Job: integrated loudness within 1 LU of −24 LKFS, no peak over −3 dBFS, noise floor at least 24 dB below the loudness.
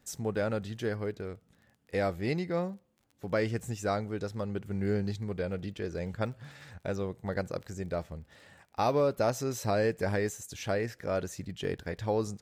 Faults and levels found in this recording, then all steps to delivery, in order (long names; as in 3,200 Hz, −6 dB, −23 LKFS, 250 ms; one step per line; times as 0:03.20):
crackle rate 25 per second; integrated loudness −33.0 LKFS; sample peak −16.0 dBFS; target loudness −24.0 LKFS
→ click removal
level +9 dB